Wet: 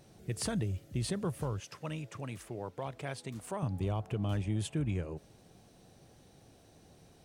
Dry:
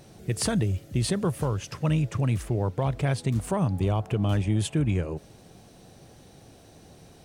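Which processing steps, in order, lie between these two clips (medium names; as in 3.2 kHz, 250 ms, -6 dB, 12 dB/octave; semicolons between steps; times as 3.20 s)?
1.60–3.63 s: high-pass 380 Hz 6 dB/octave; trim -8.5 dB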